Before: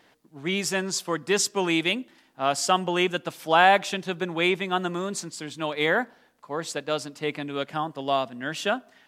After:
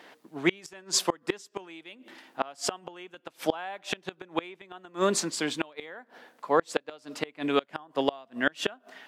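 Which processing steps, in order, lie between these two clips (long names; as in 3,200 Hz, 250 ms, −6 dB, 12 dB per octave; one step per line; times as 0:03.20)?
high-pass filter 190 Hz 12 dB per octave
bass and treble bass −5 dB, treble −5 dB
gate with flip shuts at −19 dBFS, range −29 dB
level +8.5 dB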